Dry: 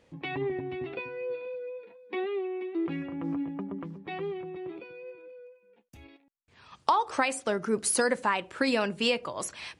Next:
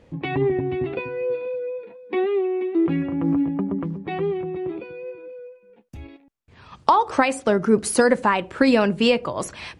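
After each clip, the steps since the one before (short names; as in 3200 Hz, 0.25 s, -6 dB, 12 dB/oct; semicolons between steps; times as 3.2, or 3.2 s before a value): tilt -2 dB/oct; gain +7.5 dB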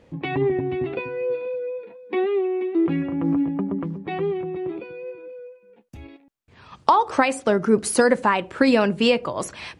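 low shelf 83 Hz -6 dB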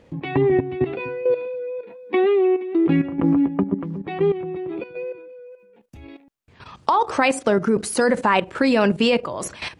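level quantiser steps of 12 dB; gain +7.5 dB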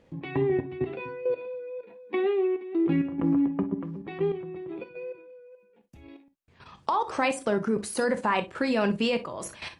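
non-linear reverb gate 80 ms flat, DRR 9.5 dB; gain -8 dB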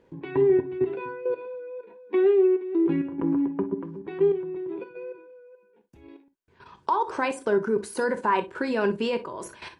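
small resonant body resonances 390/960/1500 Hz, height 11 dB, ringing for 25 ms; gain -4.5 dB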